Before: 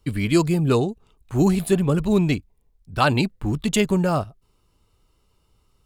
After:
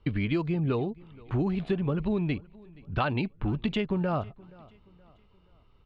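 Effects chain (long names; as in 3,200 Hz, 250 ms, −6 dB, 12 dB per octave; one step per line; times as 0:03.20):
downward compressor 6 to 1, threshold −27 dBFS, peak gain reduction 13.5 dB
low-pass filter 3,400 Hz 24 dB per octave
on a send: repeating echo 474 ms, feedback 41%, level −23.5 dB
on the sum: level +2 dB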